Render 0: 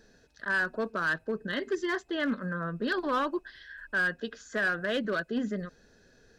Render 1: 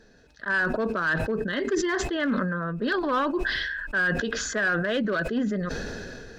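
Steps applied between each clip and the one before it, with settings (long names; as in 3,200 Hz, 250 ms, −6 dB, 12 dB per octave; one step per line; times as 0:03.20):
high-shelf EQ 7,100 Hz −10 dB
level that may fall only so fast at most 22 dB per second
level +3.5 dB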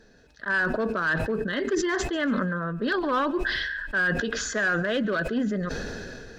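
feedback echo with a high-pass in the loop 141 ms, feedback 36%, level −20.5 dB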